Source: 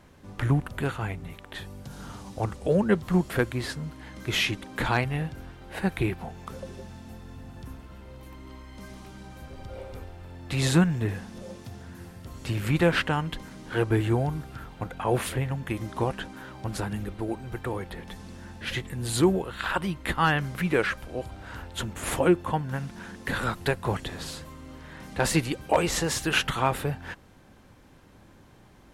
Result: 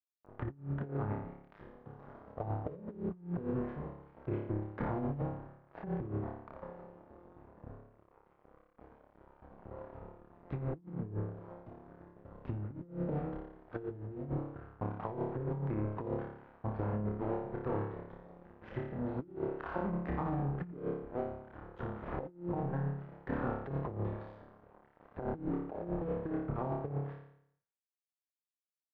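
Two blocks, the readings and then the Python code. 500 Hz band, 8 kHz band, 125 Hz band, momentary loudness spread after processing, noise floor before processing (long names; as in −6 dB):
−10.0 dB, below −40 dB, −9.0 dB, 17 LU, −54 dBFS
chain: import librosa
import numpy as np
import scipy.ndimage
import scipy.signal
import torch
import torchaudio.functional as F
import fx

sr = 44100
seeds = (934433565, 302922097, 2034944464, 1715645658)

y = fx.env_lowpass_down(x, sr, base_hz=390.0, full_db=-21.5)
y = fx.highpass(y, sr, hz=230.0, slope=6)
y = fx.tilt_eq(y, sr, slope=-4.5)
y = np.sign(y) * np.maximum(np.abs(y) - 10.0 ** (-33.0 / 20.0), 0.0)
y = fx.low_shelf(y, sr, hz=410.0, db=-9.5)
y = fx.room_flutter(y, sr, wall_m=4.9, rt60_s=0.71)
y = fx.over_compress(y, sr, threshold_db=-30.0, ratio=-0.5)
y = scipy.signal.sosfilt(scipy.signal.butter(2, 1200.0, 'lowpass', fs=sr, output='sos'), y)
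y = F.gain(torch.from_numpy(y), -6.0).numpy()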